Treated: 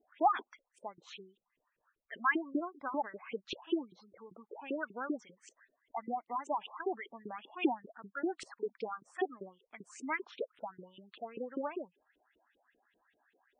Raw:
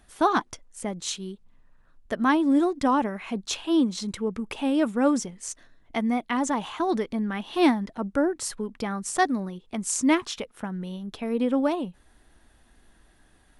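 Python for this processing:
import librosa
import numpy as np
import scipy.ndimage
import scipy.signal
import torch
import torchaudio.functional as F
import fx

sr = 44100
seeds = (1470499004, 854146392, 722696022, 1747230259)

y = fx.filter_lfo_bandpass(x, sr, shape='saw_up', hz=5.1, low_hz=360.0, high_hz=3100.0, q=4.6)
y = fx.leveller(y, sr, passes=2, at=(8.26, 8.68))
y = fx.spec_gate(y, sr, threshold_db=-15, keep='strong')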